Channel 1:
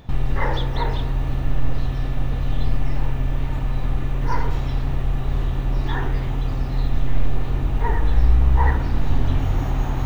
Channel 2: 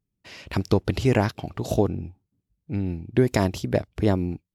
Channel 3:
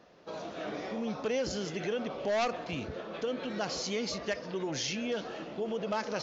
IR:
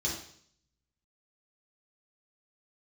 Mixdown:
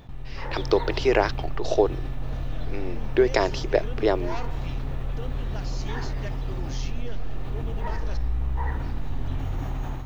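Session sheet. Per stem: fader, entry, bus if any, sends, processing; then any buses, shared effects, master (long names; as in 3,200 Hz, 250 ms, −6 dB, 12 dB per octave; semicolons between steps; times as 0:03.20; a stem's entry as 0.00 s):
−20.0 dB, 0.00 s, no send, envelope flattener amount 50%
−3.5 dB, 0.00 s, no send, elliptic band-pass filter 370–5,500 Hz
−14.5 dB, 1.95 s, no send, no processing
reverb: not used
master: automatic gain control gain up to 7.5 dB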